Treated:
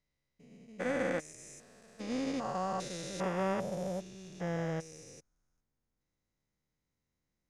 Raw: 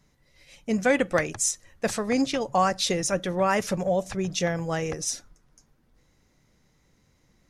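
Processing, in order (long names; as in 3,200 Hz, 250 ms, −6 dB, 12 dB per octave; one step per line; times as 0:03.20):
spectrum averaged block by block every 400 ms
expander for the loud parts 2.5 to 1, over −38 dBFS
level −3 dB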